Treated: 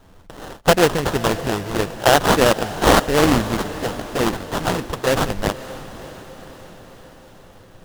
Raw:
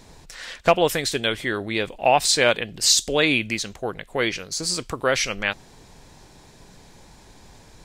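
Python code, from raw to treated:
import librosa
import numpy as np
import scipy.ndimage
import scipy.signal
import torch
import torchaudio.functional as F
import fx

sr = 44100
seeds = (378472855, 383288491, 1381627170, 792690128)

y = fx.law_mismatch(x, sr, coded='A')
y = scipy.signal.sosfilt(scipy.signal.butter(2, 9200.0, 'lowpass', fs=sr, output='sos'), y)
y = fx.high_shelf(y, sr, hz=5800.0, db=9.0)
y = fx.env_flanger(y, sr, rest_ms=11.5, full_db=-18.5)
y = fx.low_shelf(y, sr, hz=170.0, db=6.0)
y = fx.sample_hold(y, sr, seeds[0], rate_hz=2300.0, jitter_pct=20)
y = fx.echo_diffused(y, sr, ms=561, feedback_pct=58, wet_db=-15)
y = fx.doppler_dist(y, sr, depth_ms=0.42)
y = y * 10.0 ** (5.0 / 20.0)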